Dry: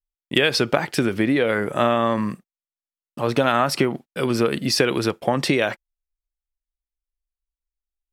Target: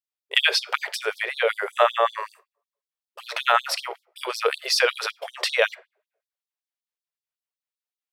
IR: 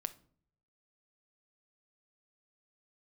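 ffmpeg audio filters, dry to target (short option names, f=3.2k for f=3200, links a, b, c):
-filter_complex "[0:a]asplit=2[a][b];[b]lowpass=5.5k[c];[1:a]atrim=start_sample=2205[d];[c][d]afir=irnorm=-1:irlink=0,volume=-1dB[e];[a][e]amix=inputs=2:normalize=0,afftfilt=real='re*gte(b*sr/1024,360*pow(3600/360,0.5+0.5*sin(2*PI*5.3*pts/sr)))':imag='im*gte(b*sr/1024,360*pow(3600/360,0.5+0.5*sin(2*PI*5.3*pts/sr)))':win_size=1024:overlap=0.75,volume=-1.5dB"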